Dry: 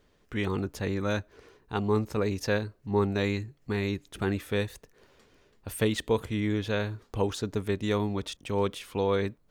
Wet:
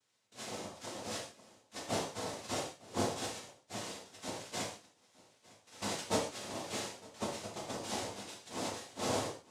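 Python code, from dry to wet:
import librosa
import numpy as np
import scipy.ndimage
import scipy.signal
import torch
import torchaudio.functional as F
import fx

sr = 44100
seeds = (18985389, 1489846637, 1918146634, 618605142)

p1 = fx.block_float(x, sr, bits=5)
p2 = scipy.signal.sosfilt(scipy.signal.butter(4, 270.0, 'highpass', fs=sr, output='sos'), p1)
p3 = fx.hum_notches(p2, sr, base_hz=50, count=8)
p4 = fx.spec_gate(p3, sr, threshold_db=-15, keep='weak')
p5 = scipy.signal.sosfilt(scipy.signal.cheby1(5, 1.0, [950.0, 3300.0], 'bandstop', fs=sr, output='sos'), p4)
p6 = fx.high_shelf(p5, sr, hz=4900.0, db=-10.5)
p7 = p6 + 0.65 * np.pad(p6, (int(3.9 * sr / 1000.0), 0))[:len(p6)]
p8 = fx.noise_vocoder(p7, sr, seeds[0], bands=2)
p9 = p8 + fx.echo_single(p8, sr, ms=906, db=-22.0, dry=0)
y = fx.rev_gated(p9, sr, seeds[1], gate_ms=170, shape='falling', drr_db=-3.0)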